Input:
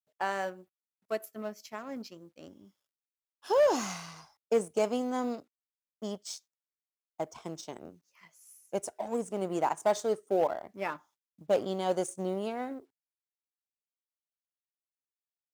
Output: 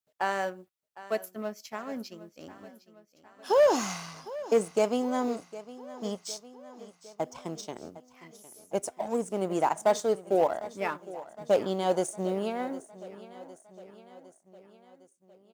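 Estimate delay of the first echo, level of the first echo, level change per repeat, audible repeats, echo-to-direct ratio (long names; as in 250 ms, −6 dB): 758 ms, −17.0 dB, −4.5 dB, 4, −15.0 dB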